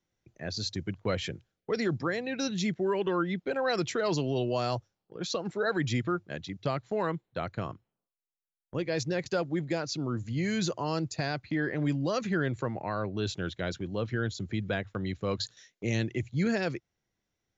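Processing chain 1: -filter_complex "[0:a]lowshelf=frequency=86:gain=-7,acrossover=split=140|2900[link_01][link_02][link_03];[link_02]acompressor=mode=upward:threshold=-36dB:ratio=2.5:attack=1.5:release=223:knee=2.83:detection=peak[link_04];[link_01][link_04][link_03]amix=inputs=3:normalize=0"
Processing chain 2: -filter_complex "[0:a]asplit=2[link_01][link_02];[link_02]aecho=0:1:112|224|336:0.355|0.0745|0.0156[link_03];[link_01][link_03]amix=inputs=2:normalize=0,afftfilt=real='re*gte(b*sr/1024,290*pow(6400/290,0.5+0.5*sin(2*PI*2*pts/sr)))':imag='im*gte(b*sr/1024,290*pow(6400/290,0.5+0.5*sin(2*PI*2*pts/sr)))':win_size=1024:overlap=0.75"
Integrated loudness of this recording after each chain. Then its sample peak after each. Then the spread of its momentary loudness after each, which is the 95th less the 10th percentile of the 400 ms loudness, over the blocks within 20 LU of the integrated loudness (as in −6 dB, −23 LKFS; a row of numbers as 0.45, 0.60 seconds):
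−32.5, −38.5 LKFS; −16.5, −18.5 dBFS; 7, 10 LU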